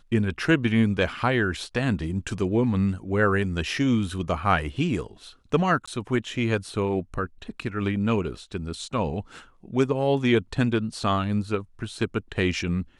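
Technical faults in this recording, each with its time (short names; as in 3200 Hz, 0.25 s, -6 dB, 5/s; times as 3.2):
5.86–5.88 gap 15 ms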